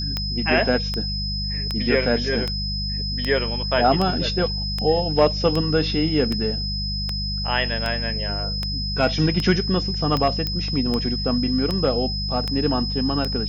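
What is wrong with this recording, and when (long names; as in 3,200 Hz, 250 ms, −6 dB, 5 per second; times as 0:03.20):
mains hum 50 Hz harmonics 4 −28 dBFS
scratch tick 78 rpm −11 dBFS
whistle 5,100 Hz −27 dBFS
0:10.47: click −12 dBFS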